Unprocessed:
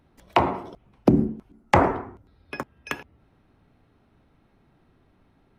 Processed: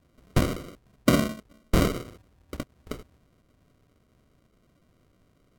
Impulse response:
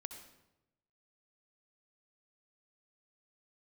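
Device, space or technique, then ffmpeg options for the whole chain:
crushed at another speed: -af "asetrate=55125,aresample=44100,acrusher=samples=41:mix=1:aa=0.000001,asetrate=35280,aresample=44100,volume=-2.5dB"

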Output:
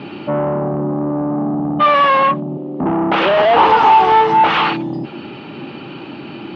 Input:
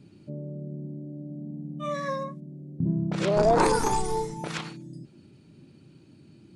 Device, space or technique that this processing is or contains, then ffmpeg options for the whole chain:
overdrive pedal into a guitar cabinet: -filter_complex "[0:a]asettb=1/sr,asplit=3[link_01][link_02][link_03];[link_01]atrim=end=2.574[link_04];[link_02]atrim=start=2.57:end=3.26,asetpts=PTS-STARTPTS,afade=type=in:duration=0.004:curve=qsin,afade=type=out:start_time=0.686:duration=0.004:curve=qsin,highpass=260[link_05];[link_03]atrim=start=3.256[link_06];[link_04][link_05]acrossfade=duration=0.004:curve1=hsin:curve2=qsin[link_07];[link_07][link_06]acrossfade=duration=0.004:curve1=qsin:curve2=hsin,asplit=2[link_08][link_09];[link_09]highpass=frequency=720:poles=1,volume=39dB,asoftclip=type=tanh:threshold=-8dB[link_10];[link_08][link_10]amix=inputs=2:normalize=0,lowpass=frequency=2300:poles=1,volume=-6dB,highpass=85,equalizer=frequency=110:width_type=q:width=4:gain=-4,equalizer=frequency=170:width_type=q:width=4:gain=-4,equalizer=frequency=830:width_type=q:width=4:gain=9,equalizer=frequency=1200:width_type=q:width=4:gain=6,equalizer=frequency=2900:width_type=q:width=4:gain=7,lowpass=frequency=3600:width=0.5412,lowpass=frequency=3600:width=1.3066"

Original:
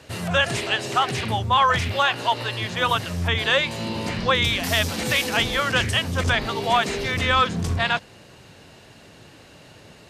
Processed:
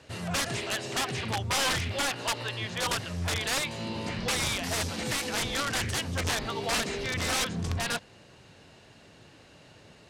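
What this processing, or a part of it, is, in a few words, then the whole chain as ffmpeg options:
overflowing digital effects unit: -af "aeval=exprs='(mod(5.62*val(0)+1,2)-1)/5.62':channel_layout=same,lowpass=9700,volume=-6.5dB"

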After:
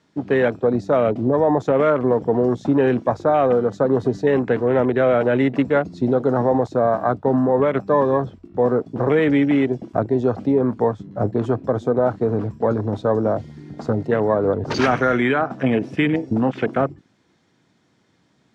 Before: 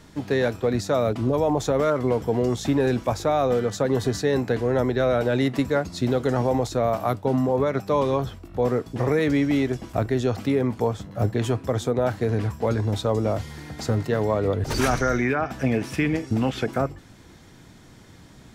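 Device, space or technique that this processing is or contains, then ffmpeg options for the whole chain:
over-cleaned archive recording: -af "highpass=150,lowpass=6300,afwtdn=0.0224,volume=5dB"

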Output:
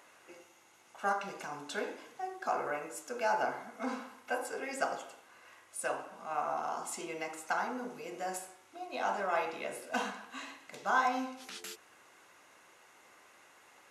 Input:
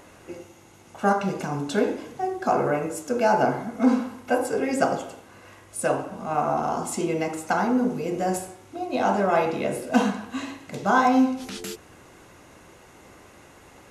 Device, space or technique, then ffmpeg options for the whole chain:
filter by subtraction: -filter_complex "[0:a]asplit=2[link_01][link_02];[link_02]lowpass=1400,volume=-1[link_03];[link_01][link_03]amix=inputs=2:normalize=0,volume=-8.5dB"

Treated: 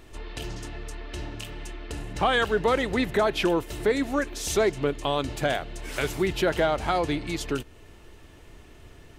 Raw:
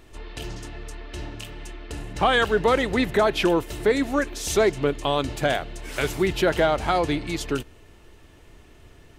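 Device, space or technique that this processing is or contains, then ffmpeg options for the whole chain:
parallel compression: -filter_complex "[0:a]asplit=2[link_01][link_02];[link_02]acompressor=threshold=-35dB:ratio=6,volume=-2dB[link_03];[link_01][link_03]amix=inputs=2:normalize=0,volume=-4dB"

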